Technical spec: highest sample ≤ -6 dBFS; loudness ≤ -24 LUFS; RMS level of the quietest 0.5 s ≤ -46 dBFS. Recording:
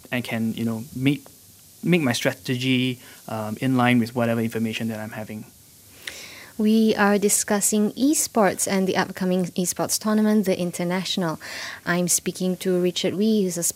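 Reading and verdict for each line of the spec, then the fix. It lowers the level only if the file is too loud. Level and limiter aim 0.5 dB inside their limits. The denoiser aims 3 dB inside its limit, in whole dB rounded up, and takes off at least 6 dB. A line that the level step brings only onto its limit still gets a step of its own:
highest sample -3.5 dBFS: fail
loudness -22.5 LUFS: fail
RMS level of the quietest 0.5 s -49 dBFS: OK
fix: gain -2 dB; limiter -6.5 dBFS

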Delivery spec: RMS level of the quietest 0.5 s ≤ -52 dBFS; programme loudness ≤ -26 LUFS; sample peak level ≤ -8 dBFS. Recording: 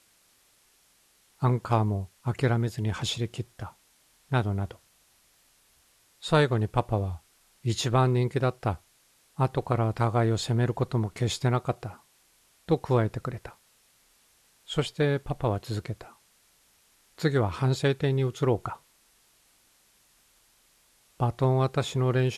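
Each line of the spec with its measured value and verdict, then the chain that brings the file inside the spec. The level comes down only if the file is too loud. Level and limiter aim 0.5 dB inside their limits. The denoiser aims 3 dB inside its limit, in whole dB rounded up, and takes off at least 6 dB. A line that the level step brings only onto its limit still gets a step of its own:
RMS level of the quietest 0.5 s -64 dBFS: OK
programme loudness -27.5 LUFS: OK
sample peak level -9.0 dBFS: OK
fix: none

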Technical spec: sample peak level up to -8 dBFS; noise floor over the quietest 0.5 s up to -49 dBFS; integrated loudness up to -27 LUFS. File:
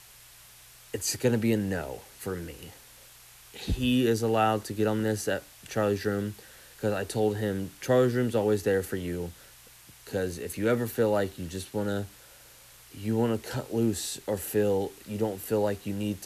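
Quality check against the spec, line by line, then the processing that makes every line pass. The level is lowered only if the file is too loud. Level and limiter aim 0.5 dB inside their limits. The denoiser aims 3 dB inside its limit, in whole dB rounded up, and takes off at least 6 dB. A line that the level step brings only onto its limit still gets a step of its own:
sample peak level -12.0 dBFS: OK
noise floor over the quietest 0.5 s -53 dBFS: OK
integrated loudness -29.0 LUFS: OK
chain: none

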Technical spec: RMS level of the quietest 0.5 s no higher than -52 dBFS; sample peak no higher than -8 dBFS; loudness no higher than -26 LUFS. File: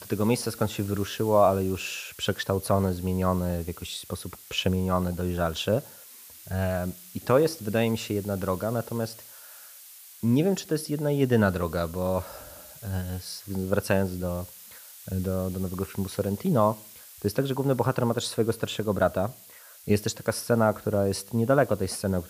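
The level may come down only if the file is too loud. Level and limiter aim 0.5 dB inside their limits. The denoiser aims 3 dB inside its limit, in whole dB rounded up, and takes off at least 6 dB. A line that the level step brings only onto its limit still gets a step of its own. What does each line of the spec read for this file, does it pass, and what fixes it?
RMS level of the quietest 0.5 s -50 dBFS: fail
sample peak -8.5 dBFS: OK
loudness -27.0 LUFS: OK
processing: denoiser 6 dB, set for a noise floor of -50 dBFS

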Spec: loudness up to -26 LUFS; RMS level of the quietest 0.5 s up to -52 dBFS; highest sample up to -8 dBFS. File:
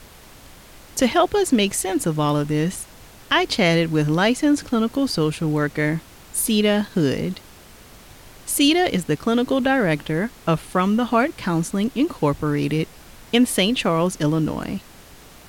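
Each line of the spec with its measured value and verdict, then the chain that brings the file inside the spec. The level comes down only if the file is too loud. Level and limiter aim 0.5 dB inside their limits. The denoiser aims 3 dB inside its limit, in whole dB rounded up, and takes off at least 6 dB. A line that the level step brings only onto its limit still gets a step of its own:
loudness -20.5 LUFS: fail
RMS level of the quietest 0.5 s -45 dBFS: fail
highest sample -6.0 dBFS: fail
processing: denoiser 6 dB, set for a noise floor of -45 dBFS; gain -6 dB

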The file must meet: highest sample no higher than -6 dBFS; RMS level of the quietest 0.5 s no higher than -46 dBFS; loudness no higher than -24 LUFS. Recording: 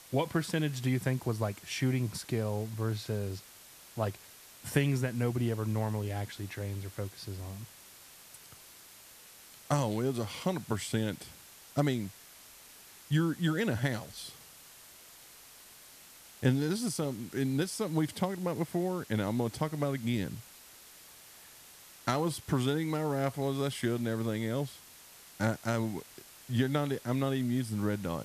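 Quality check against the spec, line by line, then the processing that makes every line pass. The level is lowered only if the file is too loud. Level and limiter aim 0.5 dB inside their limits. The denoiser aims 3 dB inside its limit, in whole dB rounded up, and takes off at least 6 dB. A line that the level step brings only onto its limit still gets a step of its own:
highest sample -13.0 dBFS: OK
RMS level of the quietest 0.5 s -54 dBFS: OK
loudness -33.0 LUFS: OK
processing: none

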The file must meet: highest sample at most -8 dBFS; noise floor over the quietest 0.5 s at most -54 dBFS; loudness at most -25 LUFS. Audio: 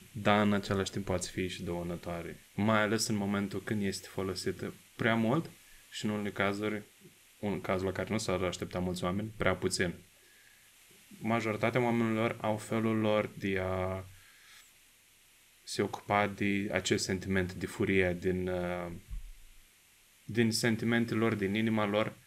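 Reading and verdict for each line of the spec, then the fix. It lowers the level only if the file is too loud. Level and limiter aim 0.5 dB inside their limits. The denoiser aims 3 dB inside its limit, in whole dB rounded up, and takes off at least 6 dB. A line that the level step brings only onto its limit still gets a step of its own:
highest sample -11.5 dBFS: OK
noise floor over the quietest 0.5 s -63 dBFS: OK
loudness -32.5 LUFS: OK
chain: none

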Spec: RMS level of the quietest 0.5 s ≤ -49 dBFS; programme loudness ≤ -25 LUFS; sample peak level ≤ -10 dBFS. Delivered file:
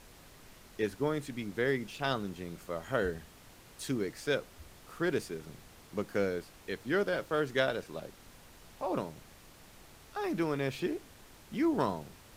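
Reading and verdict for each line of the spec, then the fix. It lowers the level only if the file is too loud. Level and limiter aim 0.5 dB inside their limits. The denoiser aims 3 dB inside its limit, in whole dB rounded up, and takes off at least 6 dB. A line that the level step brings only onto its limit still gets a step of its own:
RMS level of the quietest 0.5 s -56 dBFS: OK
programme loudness -34.5 LUFS: OK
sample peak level -14.0 dBFS: OK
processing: none

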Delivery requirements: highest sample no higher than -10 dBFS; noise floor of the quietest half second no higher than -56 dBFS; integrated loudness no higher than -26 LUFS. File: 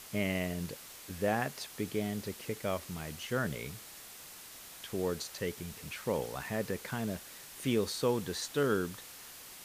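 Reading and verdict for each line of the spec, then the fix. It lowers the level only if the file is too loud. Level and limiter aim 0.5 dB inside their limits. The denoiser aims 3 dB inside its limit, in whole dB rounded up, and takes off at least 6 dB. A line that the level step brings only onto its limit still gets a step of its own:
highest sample -16.5 dBFS: OK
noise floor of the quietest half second -50 dBFS: fail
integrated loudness -35.5 LUFS: OK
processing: denoiser 9 dB, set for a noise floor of -50 dBFS

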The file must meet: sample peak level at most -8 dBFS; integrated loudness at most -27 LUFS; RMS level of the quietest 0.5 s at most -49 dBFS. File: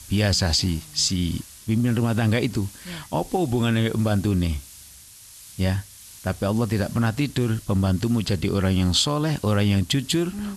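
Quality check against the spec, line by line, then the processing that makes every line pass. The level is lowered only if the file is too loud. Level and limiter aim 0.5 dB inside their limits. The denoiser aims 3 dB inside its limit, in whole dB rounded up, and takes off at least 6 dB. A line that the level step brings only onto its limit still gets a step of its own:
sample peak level -8.5 dBFS: OK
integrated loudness -23.0 LUFS: fail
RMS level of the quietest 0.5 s -46 dBFS: fail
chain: gain -4.5 dB

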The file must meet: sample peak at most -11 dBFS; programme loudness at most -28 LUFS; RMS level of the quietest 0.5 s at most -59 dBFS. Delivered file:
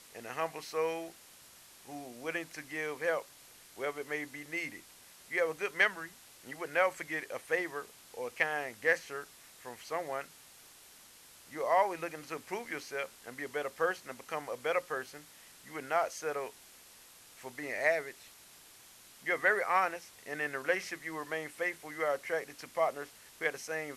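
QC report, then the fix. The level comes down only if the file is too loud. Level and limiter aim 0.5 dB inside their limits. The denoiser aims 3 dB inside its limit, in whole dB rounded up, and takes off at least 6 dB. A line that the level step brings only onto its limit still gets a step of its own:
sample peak -14.0 dBFS: OK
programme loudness -35.0 LUFS: OK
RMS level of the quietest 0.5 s -57 dBFS: fail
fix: denoiser 6 dB, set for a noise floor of -57 dBFS

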